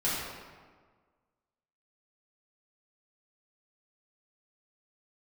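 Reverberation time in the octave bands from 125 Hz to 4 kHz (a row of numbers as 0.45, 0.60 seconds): 1.6, 1.7, 1.6, 1.5, 1.3, 0.95 seconds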